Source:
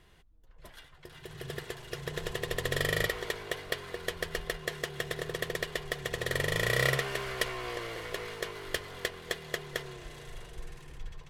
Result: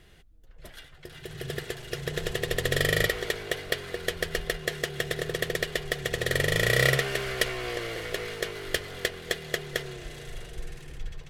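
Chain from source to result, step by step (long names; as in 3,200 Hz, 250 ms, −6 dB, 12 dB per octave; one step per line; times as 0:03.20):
parametric band 1,000 Hz −10 dB 0.42 octaves
level +5.5 dB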